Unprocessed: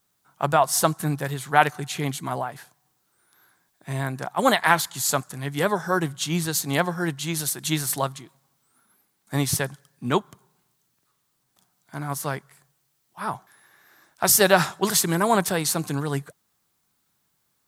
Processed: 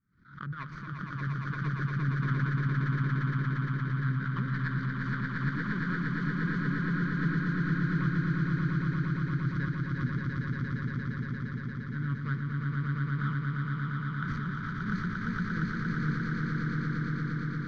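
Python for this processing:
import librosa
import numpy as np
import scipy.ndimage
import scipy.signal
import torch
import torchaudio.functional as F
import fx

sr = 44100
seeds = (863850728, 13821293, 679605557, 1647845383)

y = scipy.ndimage.median_filter(x, 25, mode='constant')
y = fx.curve_eq(y, sr, hz=(230.0, 760.0, 1500.0, 3900.0, 13000.0), db=(0, -25, 6, -8, -21))
y = fx.over_compress(y, sr, threshold_db=-30.0, ratio=-0.5)
y = fx.air_absorb(y, sr, metres=110.0)
y = fx.fixed_phaser(y, sr, hz=2700.0, stages=6)
y = fx.echo_swell(y, sr, ms=116, loudest=8, wet_db=-3.5)
y = fx.pre_swell(y, sr, db_per_s=110.0)
y = y * 10.0 ** (-4.0 / 20.0)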